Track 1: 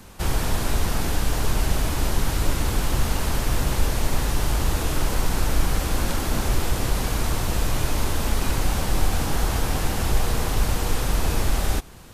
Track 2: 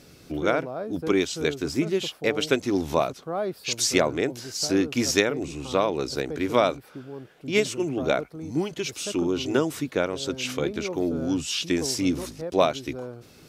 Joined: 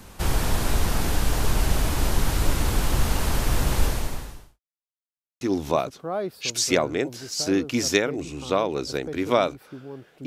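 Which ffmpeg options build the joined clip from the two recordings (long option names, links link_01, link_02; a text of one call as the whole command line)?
ffmpeg -i cue0.wav -i cue1.wav -filter_complex "[0:a]apad=whole_dur=10.26,atrim=end=10.26,asplit=2[link_01][link_02];[link_01]atrim=end=4.6,asetpts=PTS-STARTPTS,afade=type=out:start_time=3.85:duration=0.75:curve=qua[link_03];[link_02]atrim=start=4.6:end=5.41,asetpts=PTS-STARTPTS,volume=0[link_04];[1:a]atrim=start=2.64:end=7.49,asetpts=PTS-STARTPTS,afade=type=in:duration=0.004:curve=hsin[link_05];[link_03][link_04][link_05]concat=n=3:v=0:a=1" out.wav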